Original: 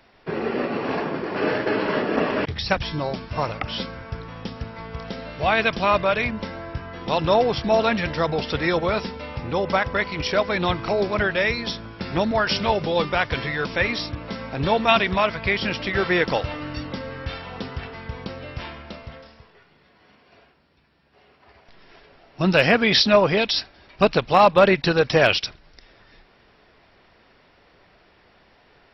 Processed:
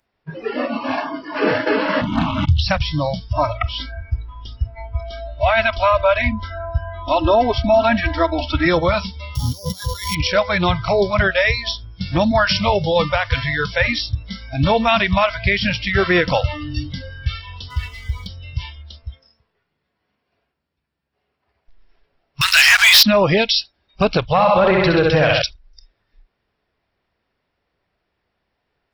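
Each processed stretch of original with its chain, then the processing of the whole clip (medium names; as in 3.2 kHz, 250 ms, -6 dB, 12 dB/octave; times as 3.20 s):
2.01–2.62 s: bass shelf 170 Hz +11 dB + static phaser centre 1.8 kHz, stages 6 + loudspeaker Doppler distortion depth 0.75 ms
3.33–8.66 s: low-pass 2.6 kHz 6 dB/octave + comb 3.1 ms, depth 67%
9.35–10.15 s: sorted samples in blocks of 8 samples + compressor with a negative ratio -30 dBFS
17.70–18.27 s: companding laws mixed up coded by mu + comb 4.1 ms, depth 31%
22.41–23.03 s: inverse Chebyshev high-pass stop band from 420 Hz, stop band 60 dB + treble shelf 5 kHz +9.5 dB + waveshaping leveller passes 5
24.23–25.42 s: distance through air 150 m + flutter echo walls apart 11.1 m, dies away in 0.93 s
whole clip: spectral noise reduction 24 dB; peaking EQ 67 Hz +5 dB 2.2 oct; loudness maximiser +11 dB; trim -5 dB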